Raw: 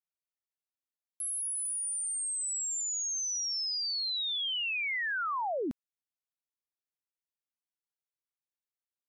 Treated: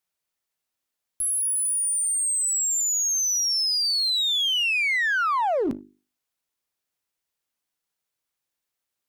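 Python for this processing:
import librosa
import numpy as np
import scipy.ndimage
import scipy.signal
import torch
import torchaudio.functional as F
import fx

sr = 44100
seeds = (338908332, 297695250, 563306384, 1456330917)

p1 = fx.hum_notches(x, sr, base_hz=50, count=8)
p2 = fx.clip_asym(p1, sr, top_db=-49.5, bottom_db=-31.5)
p3 = p1 + F.gain(torch.from_numpy(p2), -3.5).numpy()
y = F.gain(torch.from_numpy(p3), 7.0).numpy()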